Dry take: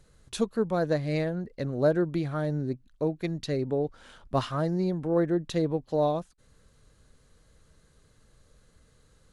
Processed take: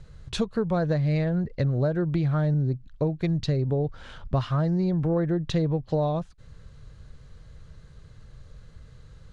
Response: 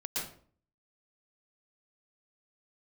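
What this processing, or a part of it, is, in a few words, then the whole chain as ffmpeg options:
jukebox: -filter_complex "[0:a]lowpass=5100,lowshelf=frequency=180:width_type=q:width=1.5:gain=7.5,acompressor=threshold=-28dB:ratio=6,asettb=1/sr,asplit=3[link_01][link_02][link_03];[link_01]atrim=end=2.544[link_04];[link_02]atrim=start=2.54:end=3.84,asetpts=PTS-STARTPTS,afade=type=in:duration=0.004:curve=qsin,afade=type=out:start_time=1.296:duration=0.004:curve=qsin,adynamicequalizer=threshold=0.00126:dfrequency=2000:dqfactor=1.1:tfrequency=2000:tqfactor=1.1:attack=5:release=100:ratio=0.375:range=2.5:mode=cutabove:tftype=bell[link_05];[link_03]atrim=start=3.836[link_06];[link_04][link_05]acrossfade=duration=0.004:curve1=hsin:curve2=qsin[link_07];[link_07][link_06]acrossfade=duration=0.004:curve1=qsin:curve2=hsin,volume=6.5dB"

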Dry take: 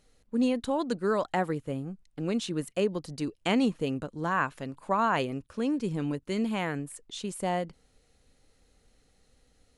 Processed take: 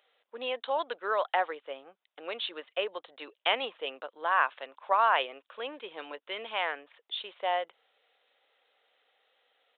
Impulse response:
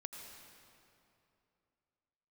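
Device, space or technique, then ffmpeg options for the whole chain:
musical greeting card: -af "aresample=8000,aresample=44100,highpass=frequency=570:width=0.5412,highpass=frequency=570:width=1.3066,equalizer=frequency=3400:width_type=o:width=0.52:gain=5,volume=2.5dB"

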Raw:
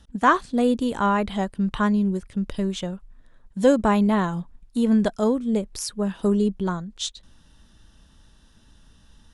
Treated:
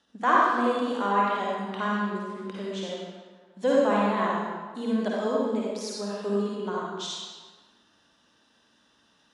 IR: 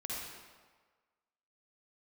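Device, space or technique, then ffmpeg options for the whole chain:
supermarket ceiling speaker: -filter_complex "[0:a]highpass=340,lowpass=6000[link_01];[1:a]atrim=start_sample=2205[link_02];[link_01][link_02]afir=irnorm=-1:irlink=0,volume=-2dB"

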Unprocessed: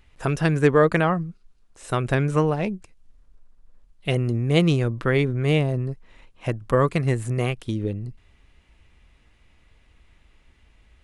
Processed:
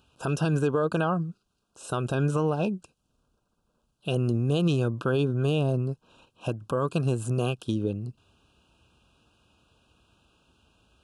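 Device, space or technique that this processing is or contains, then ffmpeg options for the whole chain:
PA system with an anti-feedback notch: -af "highpass=110,asuperstop=centerf=2000:order=20:qfactor=2.4,alimiter=limit=-16dB:level=0:latency=1:release=104"

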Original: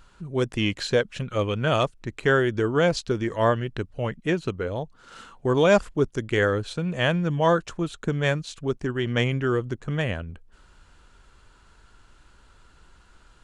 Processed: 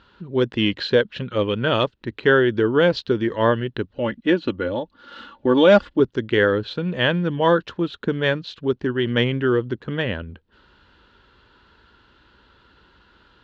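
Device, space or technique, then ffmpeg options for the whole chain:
guitar cabinet: -filter_complex "[0:a]equalizer=frequency=4200:width=1.6:gain=3.5,asettb=1/sr,asplit=3[link_01][link_02][link_03];[link_01]atrim=end=3.964[link_04];[link_02]atrim=start=3.96:end=6,asetpts=PTS-STARTPTS,afade=type=in:duration=0.004:curve=qsin,afade=type=out:start_time=2.036:duration=0.004:curve=qsin,aecho=1:1:3.5:0.62,atrim=end_sample=89964[link_05];[link_03]atrim=start=5.996[link_06];[link_04][link_05]acrossfade=duration=0.004:curve1=hsin:curve2=qsin[link_07];[link_07][link_06]acrossfade=duration=0.004:curve1=qsin:curve2=hsin,highpass=90,equalizer=frequency=100:width_type=q:width=4:gain=-5,equalizer=frequency=150:width_type=q:width=4:gain=-8,equalizer=frequency=700:width_type=q:width=4:gain=-9,equalizer=frequency=1200:width_type=q:width=4:gain=-5,equalizer=frequency=2300:width_type=q:width=4:gain=-7,lowpass=frequency=3700:width=0.5412,lowpass=frequency=3700:width=1.3066,volume=6dB"

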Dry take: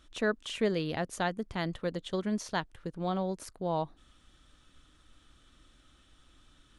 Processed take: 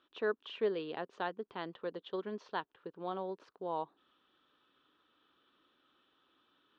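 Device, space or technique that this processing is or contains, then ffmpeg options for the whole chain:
phone earpiece: -af "highpass=340,equalizer=frequency=410:width_type=q:width=4:gain=6,equalizer=frequency=640:width_type=q:width=4:gain=-4,equalizer=frequency=1000:width_type=q:width=4:gain=4,equalizer=frequency=2100:width_type=q:width=4:gain=-8,lowpass=frequency=3500:width=0.5412,lowpass=frequency=3500:width=1.3066,volume=-5dB"

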